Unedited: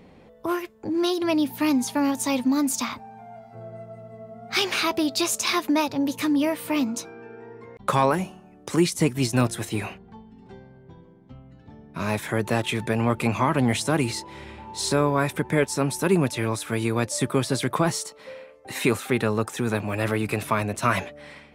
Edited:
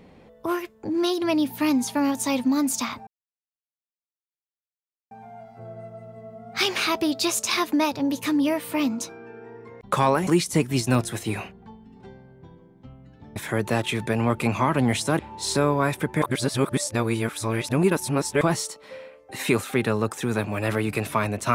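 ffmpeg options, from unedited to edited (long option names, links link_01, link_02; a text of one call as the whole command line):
ffmpeg -i in.wav -filter_complex "[0:a]asplit=7[link_01][link_02][link_03][link_04][link_05][link_06][link_07];[link_01]atrim=end=3.07,asetpts=PTS-STARTPTS,afade=type=out:start_time=3.066:duration=0.004:curve=hsin,apad=pad_dur=2.04[link_08];[link_02]atrim=start=3.07:end=8.232,asetpts=PTS-STARTPTS,afade=type=in:duration=0.004:curve=hsin[link_09];[link_03]atrim=start=8.728:end=11.822[link_10];[link_04]atrim=start=12.158:end=13.992[link_11];[link_05]atrim=start=14.548:end=15.582[link_12];[link_06]atrim=start=15.578:end=17.772,asetpts=PTS-STARTPTS,areverse[link_13];[link_07]atrim=start=17.768[link_14];[link_08][link_09]concat=n=2:v=0:a=1[link_15];[link_15][link_10]acrossfade=duration=0.004:curve1=hsin:curve2=hsin[link_16];[link_16][link_11]acrossfade=duration=0.004:curve1=hsin:curve2=hsin[link_17];[link_17][link_12]acrossfade=duration=0.004:curve1=hsin:curve2=hsin[link_18];[link_18][link_13]acrossfade=duration=0.004:curve1=hsin:curve2=hsin[link_19];[link_19][link_14]acrossfade=duration=0.004:curve1=hsin:curve2=hsin" out.wav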